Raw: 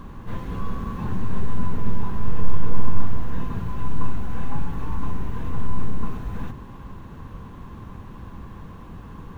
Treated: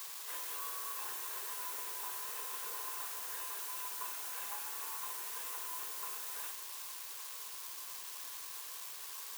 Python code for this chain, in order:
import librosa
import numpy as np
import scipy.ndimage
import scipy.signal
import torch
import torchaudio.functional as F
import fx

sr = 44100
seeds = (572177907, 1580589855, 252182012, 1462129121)

y = fx.quant_dither(x, sr, seeds[0], bits=8, dither='none')
y = scipy.signal.sosfilt(scipy.signal.butter(6, 370.0, 'highpass', fs=sr, output='sos'), y)
y = np.diff(y, prepend=0.0)
y = y * librosa.db_to_amplitude(7.5)